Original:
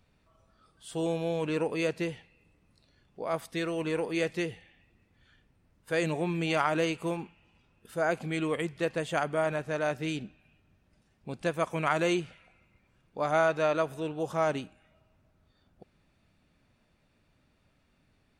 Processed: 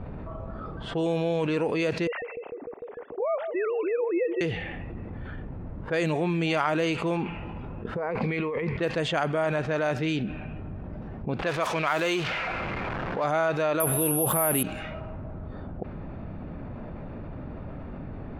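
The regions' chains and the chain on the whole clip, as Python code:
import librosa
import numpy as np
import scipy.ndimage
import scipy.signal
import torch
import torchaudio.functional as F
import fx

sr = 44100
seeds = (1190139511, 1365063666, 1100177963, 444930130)

y = fx.chain(x, sr, fx.sine_speech(),
    fx.lowpass(hz=2300.0, slope=12),
    fx.echo_wet_lowpass(ms=150, feedback_pct=76, hz=610.0, wet_db=-18), at=(2.07, 4.41))
y = fx.chain(y, sr, fx.ripple_eq(per_octave=0.89, db=9),
    fx.over_compress(threshold_db=-39.0, ratio=-1.0), at=(7.96, 8.77))
y = fx.chain(y, sr, fx.zero_step(step_db=-36.0),
    fx.low_shelf(hz=380.0, db=-11.5), at=(11.39, 13.24))
y = fx.chain(y, sr, fx.lowpass(hz=3700.0, slope=24),
    fx.resample_bad(factor=4, down='filtered', up='zero_stuff'),
    fx.env_flatten(amount_pct=70), at=(13.8, 14.63))
y = fx.env_lowpass(y, sr, base_hz=910.0, full_db=-25.0)
y = fx.peak_eq(y, sr, hz=9000.0, db=-7.5, octaves=0.98)
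y = fx.env_flatten(y, sr, amount_pct=70)
y = F.gain(torch.from_numpy(y), -1.0).numpy()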